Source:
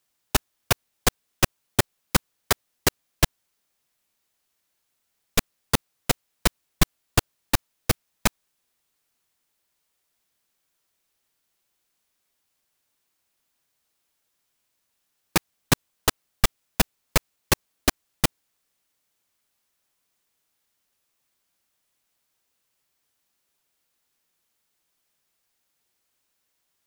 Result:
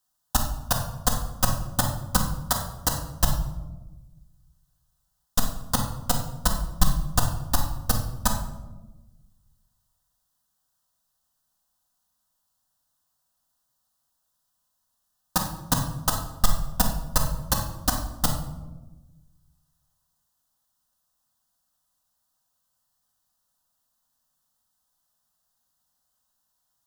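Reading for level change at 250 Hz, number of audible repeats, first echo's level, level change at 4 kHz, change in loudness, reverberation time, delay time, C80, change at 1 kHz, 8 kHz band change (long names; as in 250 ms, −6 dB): −1.5 dB, no echo audible, no echo audible, −3.5 dB, −0.5 dB, 1.2 s, no echo audible, 9.0 dB, +1.5 dB, 0.0 dB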